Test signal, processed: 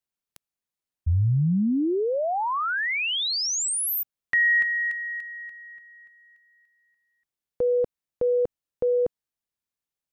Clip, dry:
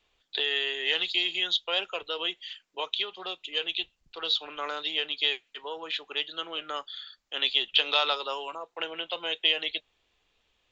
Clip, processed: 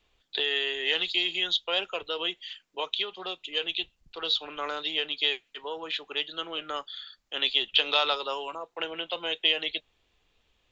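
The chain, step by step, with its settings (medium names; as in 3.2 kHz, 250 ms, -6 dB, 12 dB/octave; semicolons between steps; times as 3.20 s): bass shelf 300 Hz +6.5 dB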